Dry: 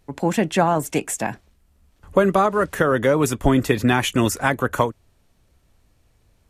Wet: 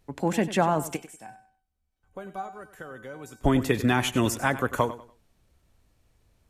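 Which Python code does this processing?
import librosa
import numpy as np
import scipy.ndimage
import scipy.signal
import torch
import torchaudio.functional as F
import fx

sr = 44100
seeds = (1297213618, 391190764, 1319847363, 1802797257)

y = fx.comb_fb(x, sr, f0_hz=760.0, decay_s=0.31, harmonics='all', damping=0.0, mix_pct=90, at=(0.95, 3.43), fade=0.02)
y = fx.echo_feedback(y, sr, ms=96, feedback_pct=28, wet_db=-14.5)
y = y * librosa.db_to_amplitude(-5.0)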